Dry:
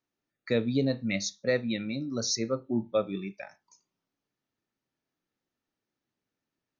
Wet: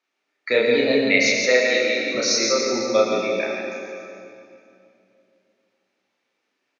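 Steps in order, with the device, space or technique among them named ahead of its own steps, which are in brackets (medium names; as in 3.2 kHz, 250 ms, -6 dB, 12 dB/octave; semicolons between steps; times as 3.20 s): station announcement (band-pass 470–4700 Hz; peaking EQ 2.3 kHz +5.5 dB 0.36 oct; loudspeakers at several distances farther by 11 m -1 dB, 59 m -5 dB; reverberation RT60 2.6 s, pre-delay 68 ms, DRR 0.5 dB); 1.46–2.15 s: high-pass 260 Hz 12 dB/octave; treble shelf 6.2 kHz +5.5 dB; trim +8.5 dB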